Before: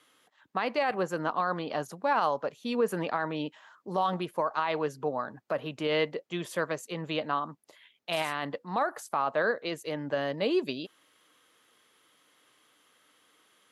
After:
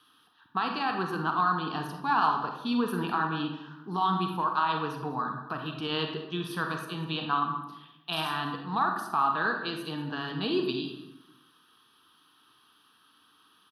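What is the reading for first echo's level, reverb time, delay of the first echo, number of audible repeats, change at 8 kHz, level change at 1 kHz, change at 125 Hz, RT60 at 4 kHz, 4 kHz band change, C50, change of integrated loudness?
-17.5 dB, 0.90 s, 197 ms, 1, -5.0 dB, +3.5 dB, +4.5 dB, 0.60 s, +3.5 dB, 4.5 dB, +1.0 dB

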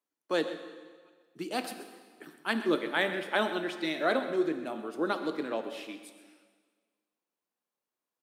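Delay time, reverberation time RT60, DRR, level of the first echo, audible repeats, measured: 130 ms, 1.6 s, 7.5 dB, -14.5 dB, 1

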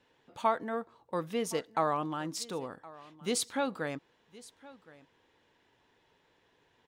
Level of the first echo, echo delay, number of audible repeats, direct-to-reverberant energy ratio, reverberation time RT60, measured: -20.5 dB, 1067 ms, 1, no reverb, no reverb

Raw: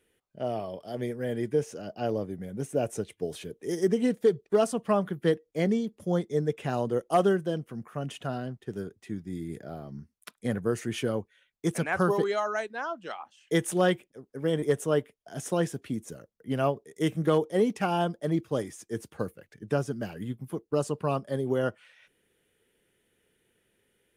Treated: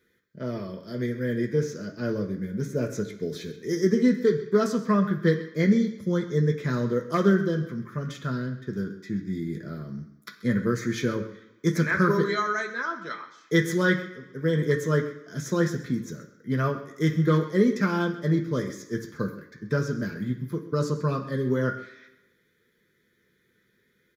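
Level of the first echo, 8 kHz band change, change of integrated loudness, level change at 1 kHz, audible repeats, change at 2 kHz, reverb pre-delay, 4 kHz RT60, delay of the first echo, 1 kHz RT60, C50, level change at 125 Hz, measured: -17.0 dB, -0.5 dB, +3.0 dB, 0.0 dB, 1, +7.0 dB, 3 ms, 0.95 s, 131 ms, 1.0 s, 9.5 dB, +6.5 dB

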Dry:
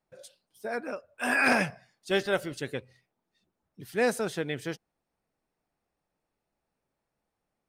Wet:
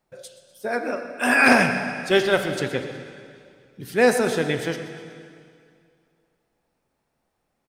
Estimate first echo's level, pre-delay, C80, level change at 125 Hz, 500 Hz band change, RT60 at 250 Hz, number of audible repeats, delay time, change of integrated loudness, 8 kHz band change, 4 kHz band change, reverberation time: -15.5 dB, 4 ms, 7.5 dB, +8.5 dB, +9.0 dB, 2.3 s, 2, 124 ms, +8.5 dB, +8.0 dB, +8.5 dB, 2.3 s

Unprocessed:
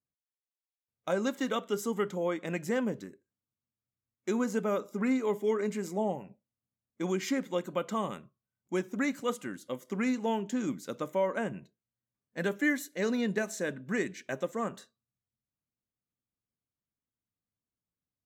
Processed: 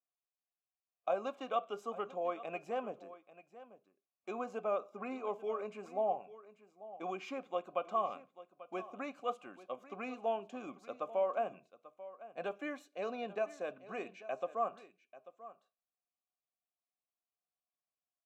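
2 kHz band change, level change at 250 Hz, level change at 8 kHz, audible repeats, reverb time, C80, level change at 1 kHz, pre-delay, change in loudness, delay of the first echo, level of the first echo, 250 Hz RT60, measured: -12.0 dB, -16.0 dB, under -20 dB, 1, no reverb, no reverb, 0.0 dB, no reverb, -7.0 dB, 840 ms, -16.5 dB, no reverb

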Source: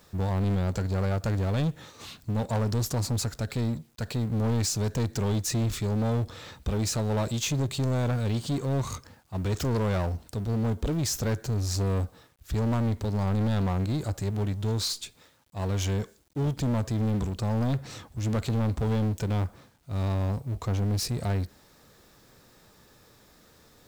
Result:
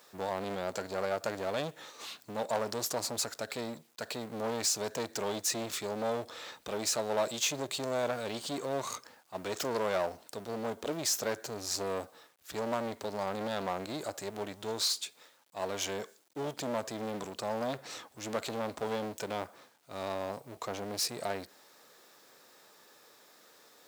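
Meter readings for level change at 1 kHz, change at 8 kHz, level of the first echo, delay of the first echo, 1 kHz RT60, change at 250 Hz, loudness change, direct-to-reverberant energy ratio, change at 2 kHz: 0.0 dB, 0.0 dB, no echo, no echo, no reverb, -11.0 dB, -6.5 dB, no reverb, 0.0 dB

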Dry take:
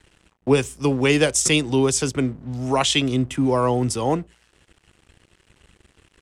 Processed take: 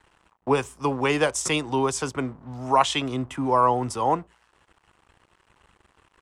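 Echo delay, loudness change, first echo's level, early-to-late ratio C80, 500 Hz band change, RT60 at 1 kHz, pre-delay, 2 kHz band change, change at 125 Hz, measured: no echo, -3.5 dB, no echo, no reverb, -4.0 dB, no reverb, no reverb, -4.0 dB, -8.0 dB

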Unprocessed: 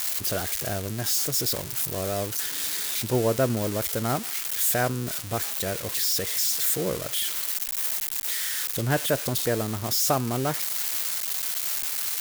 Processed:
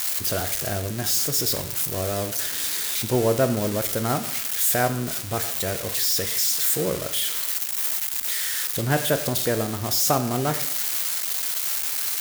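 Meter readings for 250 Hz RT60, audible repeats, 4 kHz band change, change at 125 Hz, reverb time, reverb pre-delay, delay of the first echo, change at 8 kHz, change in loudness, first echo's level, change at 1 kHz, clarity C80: 0.85 s, no echo, +2.5 dB, +2.0 dB, 0.80 s, 5 ms, no echo, +2.5 dB, +2.5 dB, no echo, +3.0 dB, 14.5 dB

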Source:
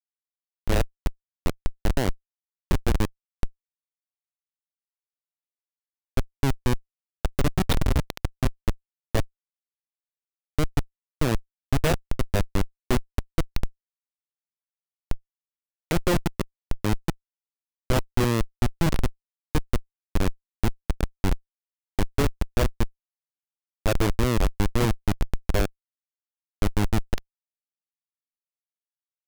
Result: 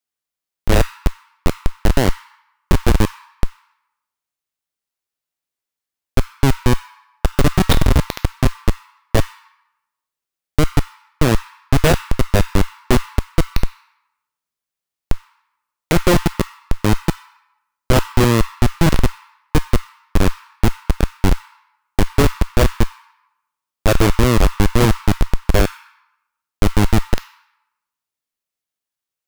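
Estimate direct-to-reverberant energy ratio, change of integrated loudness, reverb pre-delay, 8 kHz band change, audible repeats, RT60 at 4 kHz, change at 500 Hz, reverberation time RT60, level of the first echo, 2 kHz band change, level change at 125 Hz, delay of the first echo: 8.5 dB, +9.0 dB, 9 ms, +9.5 dB, no echo, 0.65 s, +9.0 dB, 1.0 s, no echo, +9.5 dB, +9.0 dB, no echo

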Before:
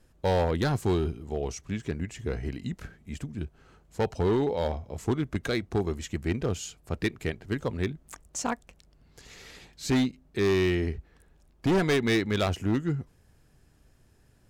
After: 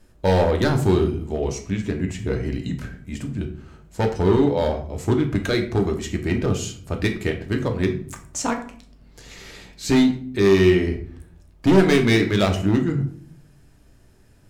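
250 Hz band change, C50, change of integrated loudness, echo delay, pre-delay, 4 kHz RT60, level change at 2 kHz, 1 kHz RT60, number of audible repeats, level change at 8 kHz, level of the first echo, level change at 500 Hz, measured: +8.5 dB, 10.5 dB, +8.0 dB, no echo, 3 ms, 0.35 s, +6.5 dB, 0.45 s, no echo, +6.0 dB, no echo, +8.0 dB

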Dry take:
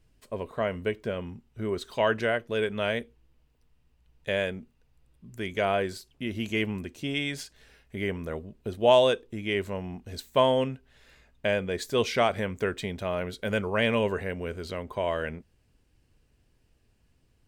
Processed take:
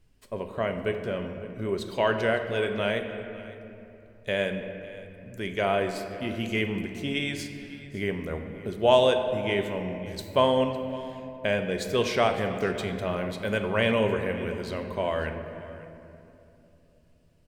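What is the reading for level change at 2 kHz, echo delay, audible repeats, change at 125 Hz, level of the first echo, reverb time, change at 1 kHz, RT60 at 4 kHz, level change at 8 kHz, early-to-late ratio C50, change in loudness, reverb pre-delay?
+1.0 dB, 556 ms, 1, +1.5 dB, -19.0 dB, 2.9 s, +1.0 dB, 1.6 s, +0.5 dB, 7.0 dB, +1.0 dB, 5 ms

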